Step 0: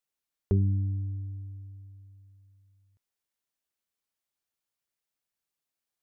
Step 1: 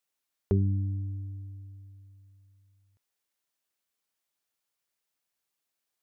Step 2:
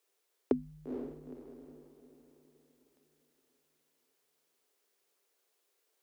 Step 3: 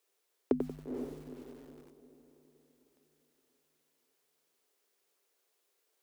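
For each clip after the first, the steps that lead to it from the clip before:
low-shelf EQ 210 Hz −6.5 dB; level +4 dB
frequency shifter −140 Hz; high-pass with resonance 410 Hz, resonance Q 4.9; feedback delay with all-pass diffusion 468 ms, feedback 41%, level −6 dB; level +4.5 dB
feedback echo at a low word length 92 ms, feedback 35%, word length 9 bits, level −6.5 dB

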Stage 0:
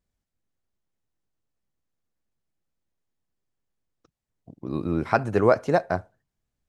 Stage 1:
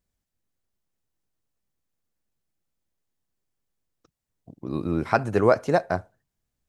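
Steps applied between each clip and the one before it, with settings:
high-shelf EQ 6,000 Hz +5 dB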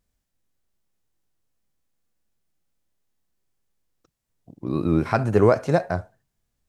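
harmonic and percussive parts rebalanced percussive −9 dB
pitch vibrato 3.8 Hz 45 cents
level +7 dB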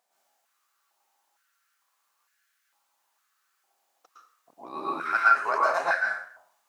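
reversed playback
downward compressor 16 to 1, threshold −27 dBFS, peak gain reduction 17 dB
reversed playback
dense smooth reverb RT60 0.53 s, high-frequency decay 0.85×, pre-delay 100 ms, DRR −5.5 dB
high-pass on a step sequencer 2.2 Hz 750–1,600 Hz
level +3 dB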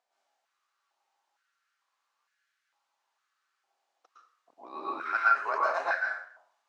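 band-pass filter 280–5,300 Hz
level −4 dB

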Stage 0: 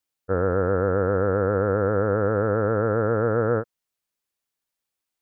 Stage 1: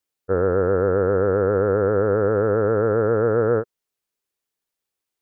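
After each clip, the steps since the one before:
parametric band 410 Hz +6.5 dB 0.49 octaves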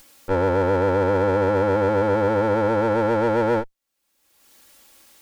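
lower of the sound and its delayed copy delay 3.6 ms
upward compression, threshold −26 dBFS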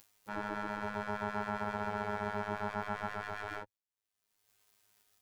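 phases set to zero 104 Hz
gate on every frequency bin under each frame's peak −10 dB weak
level −8 dB

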